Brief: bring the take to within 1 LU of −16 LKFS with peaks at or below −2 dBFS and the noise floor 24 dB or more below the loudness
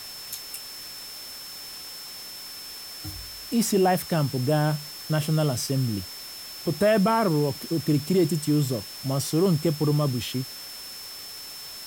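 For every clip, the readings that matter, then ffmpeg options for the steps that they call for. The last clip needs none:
interfering tone 5,300 Hz; level of the tone −39 dBFS; background noise floor −40 dBFS; target noise floor −51 dBFS; integrated loudness −26.5 LKFS; sample peak −11.5 dBFS; target loudness −16.0 LKFS
→ -af "bandreject=frequency=5300:width=30"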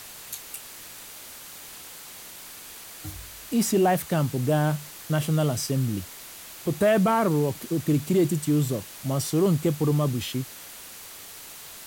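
interfering tone none found; background noise floor −43 dBFS; target noise floor −49 dBFS
→ -af "afftdn=noise_reduction=6:noise_floor=-43"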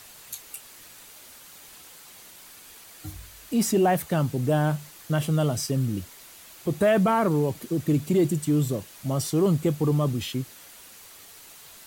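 background noise floor −48 dBFS; target noise floor −49 dBFS
→ -af "afftdn=noise_reduction=6:noise_floor=-48"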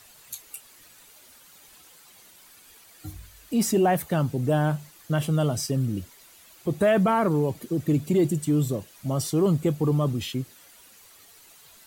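background noise floor −53 dBFS; integrated loudness −25.0 LKFS; sample peak −12.0 dBFS; target loudness −16.0 LKFS
→ -af "volume=9dB"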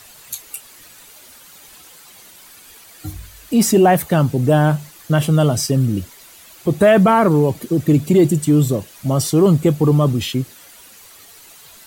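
integrated loudness −16.0 LKFS; sample peak −3.0 dBFS; background noise floor −44 dBFS

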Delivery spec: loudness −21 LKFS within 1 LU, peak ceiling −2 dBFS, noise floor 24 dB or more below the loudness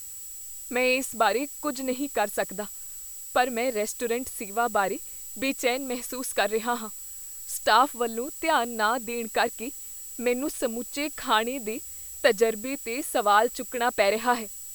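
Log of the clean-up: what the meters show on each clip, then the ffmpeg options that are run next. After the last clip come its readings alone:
interfering tone 7,800 Hz; level of the tone −40 dBFS; background noise floor −40 dBFS; target noise floor −51 dBFS; integrated loudness −27.0 LKFS; sample peak −6.5 dBFS; target loudness −21.0 LKFS
→ -af "bandreject=frequency=7800:width=30"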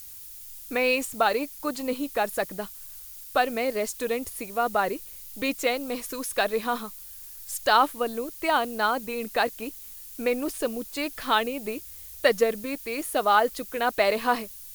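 interfering tone none found; background noise floor −43 dBFS; target noise floor −51 dBFS
→ -af "afftdn=noise_reduction=8:noise_floor=-43"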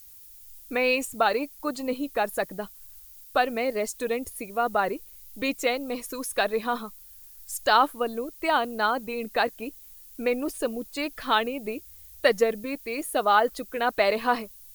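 background noise floor −49 dBFS; target noise floor −51 dBFS
→ -af "afftdn=noise_reduction=6:noise_floor=-49"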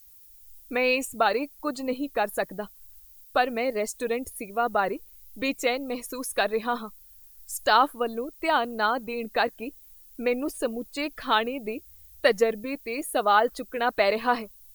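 background noise floor −52 dBFS; integrated loudness −27.0 LKFS; sample peak −6.5 dBFS; target loudness −21.0 LKFS
→ -af "volume=6dB,alimiter=limit=-2dB:level=0:latency=1"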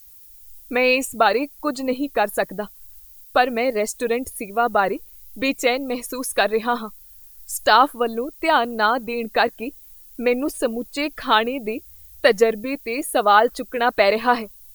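integrated loudness −21.0 LKFS; sample peak −2.0 dBFS; background noise floor −46 dBFS

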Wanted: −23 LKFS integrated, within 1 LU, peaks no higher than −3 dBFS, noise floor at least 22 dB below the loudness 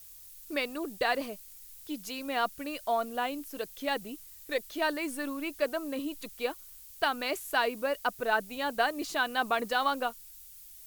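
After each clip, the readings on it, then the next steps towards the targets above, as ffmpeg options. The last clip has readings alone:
background noise floor −51 dBFS; target noise floor −54 dBFS; integrated loudness −32.0 LKFS; sample peak −13.5 dBFS; target loudness −23.0 LKFS
→ -af "afftdn=noise_reduction=6:noise_floor=-51"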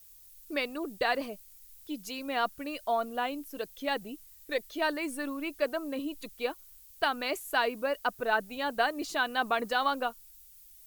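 background noise floor −55 dBFS; integrated loudness −32.0 LKFS; sample peak −13.5 dBFS; target loudness −23.0 LKFS
→ -af "volume=9dB"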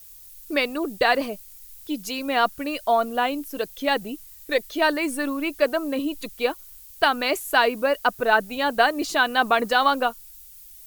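integrated loudness −23.0 LKFS; sample peak −4.5 dBFS; background noise floor −46 dBFS

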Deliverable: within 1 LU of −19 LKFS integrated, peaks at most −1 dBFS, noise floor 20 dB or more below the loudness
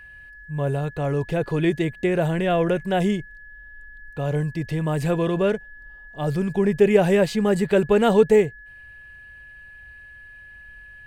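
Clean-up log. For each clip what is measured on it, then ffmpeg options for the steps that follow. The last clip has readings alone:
interfering tone 1,700 Hz; level of the tone −42 dBFS; integrated loudness −21.5 LKFS; sample peak −4.5 dBFS; target loudness −19.0 LKFS
→ -af "bandreject=frequency=1700:width=30"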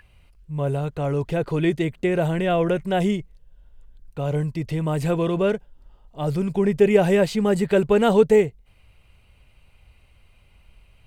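interfering tone none found; integrated loudness −22.0 LKFS; sample peak −4.5 dBFS; target loudness −19.0 LKFS
→ -af "volume=3dB"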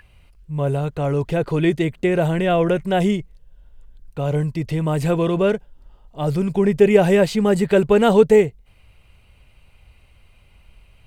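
integrated loudness −19.0 LKFS; sample peak −1.5 dBFS; background noise floor −53 dBFS

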